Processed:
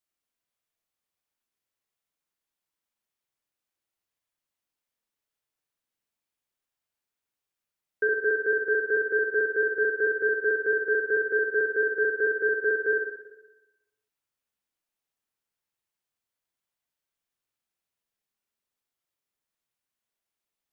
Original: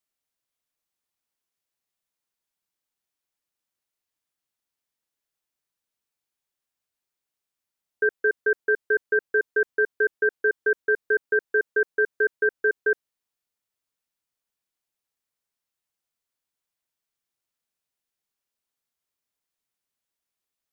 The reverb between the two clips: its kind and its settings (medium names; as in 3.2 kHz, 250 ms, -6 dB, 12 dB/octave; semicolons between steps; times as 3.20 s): spring tank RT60 1 s, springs 46/55 ms, chirp 75 ms, DRR 0.5 dB; trim -3 dB